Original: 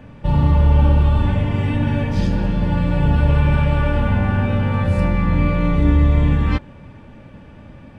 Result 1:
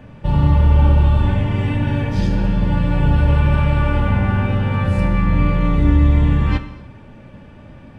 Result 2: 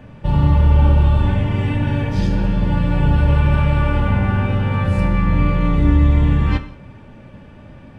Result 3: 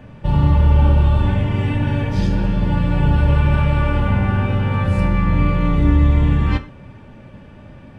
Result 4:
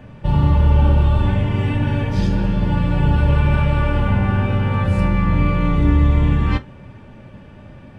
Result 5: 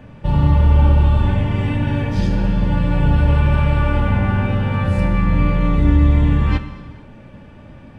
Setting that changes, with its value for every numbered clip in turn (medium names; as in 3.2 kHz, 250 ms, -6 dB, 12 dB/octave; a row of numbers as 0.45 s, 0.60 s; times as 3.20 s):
gated-style reverb, gate: 330 ms, 220 ms, 140 ms, 80 ms, 500 ms